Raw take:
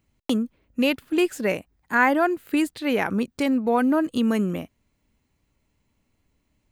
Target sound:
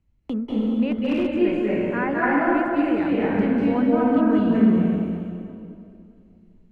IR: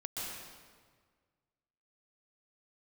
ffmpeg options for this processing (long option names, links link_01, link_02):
-filter_complex "[0:a]bandreject=frequency=63.69:width_type=h:width=4,bandreject=frequency=127.38:width_type=h:width=4,bandreject=frequency=191.07:width_type=h:width=4,bandreject=frequency=254.76:width_type=h:width=4,bandreject=frequency=318.45:width_type=h:width=4,bandreject=frequency=382.14:width_type=h:width=4,bandreject=frequency=445.83:width_type=h:width=4,bandreject=frequency=509.52:width_type=h:width=4,bandreject=frequency=573.21:width_type=h:width=4,bandreject=frequency=636.9:width_type=h:width=4,bandreject=frequency=700.59:width_type=h:width=4,bandreject=frequency=764.28:width_type=h:width=4,bandreject=frequency=827.97:width_type=h:width=4,bandreject=frequency=891.66:width_type=h:width=4,bandreject=frequency=955.35:width_type=h:width=4,bandreject=frequency=1019.04:width_type=h:width=4,bandreject=frequency=1082.73:width_type=h:width=4,bandreject=frequency=1146.42:width_type=h:width=4,bandreject=frequency=1210.11:width_type=h:width=4,bandreject=frequency=1273.8:width_type=h:width=4,bandreject=frequency=1337.49:width_type=h:width=4,bandreject=frequency=1401.18:width_type=h:width=4,bandreject=frequency=1464.87:width_type=h:width=4,bandreject=frequency=1528.56:width_type=h:width=4,bandreject=frequency=1592.25:width_type=h:width=4,bandreject=frequency=1655.94:width_type=h:width=4,bandreject=frequency=1719.63:width_type=h:width=4,bandreject=frequency=1783.32:width_type=h:width=4,bandreject=frequency=1847.01:width_type=h:width=4,bandreject=frequency=1910.7:width_type=h:width=4,bandreject=frequency=1974.39:width_type=h:width=4,bandreject=frequency=2038.08:width_type=h:width=4,bandreject=frequency=2101.77:width_type=h:width=4,bandreject=frequency=2165.46:width_type=h:width=4,bandreject=frequency=2229.15:width_type=h:width=4[link_01];[1:a]atrim=start_sample=2205,asetrate=27342,aresample=44100[link_02];[link_01][link_02]afir=irnorm=-1:irlink=0,acrossover=split=370|3100[link_03][link_04][link_05];[link_05]acompressor=threshold=-52dB:ratio=6[link_06];[link_03][link_04][link_06]amix=inputs=3:normalize=0,aemphasis=mode=reproduction:type=bsi,asettb=1/sr,asplit=3[link_07][link_08][link_09];[link_07]atrim=end=0.864[link_10];[link_08]atrim=start=0.86:end=1.38,asetpts=PTS-STARTPTS,afade=type=in:duration=0.004:curve=qsin,afade=type=out:start_time=0.516:duration=0.004:curve=qsin,volume=11dB,asoftclip=hard,volume=-11dB[link_11];[link_09]atrim=start=1.376[link_12];[link_10][link_11]acrossfade=duration=0.004:curve1=hsin:curve2=qsin[link_13];[link_13][link_12]acrossfade=duration=0.004:curve1=qsin:curve2=hsin,volume=-5.5dB"